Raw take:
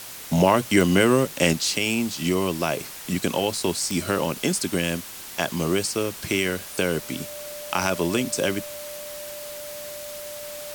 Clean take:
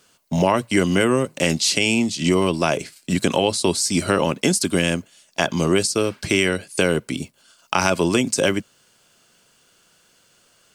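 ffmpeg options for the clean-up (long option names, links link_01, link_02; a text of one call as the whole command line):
ffmpeg -i in.wav -af "adeclick=threshold=4,bandreject=frequency=590:width=30,afwtdn=0.013,asetnsamples=nb_out_samples=441:pad=0,asendcmd='1.53 volume volume 5dB',volume=0dB" out.wav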